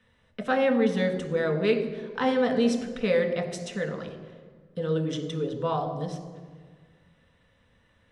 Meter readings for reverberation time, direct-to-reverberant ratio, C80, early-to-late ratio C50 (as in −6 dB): 1.6 s, 3.5 dB, 10.5 dB, 9.0 dB